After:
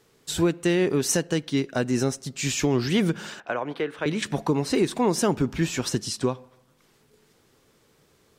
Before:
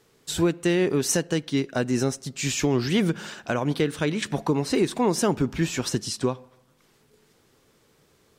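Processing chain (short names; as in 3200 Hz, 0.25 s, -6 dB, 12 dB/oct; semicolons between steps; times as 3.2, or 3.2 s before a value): 3.4–4.06 three-band isolator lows -15 dB, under 370 Hz, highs -18 dB, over 2900 Hz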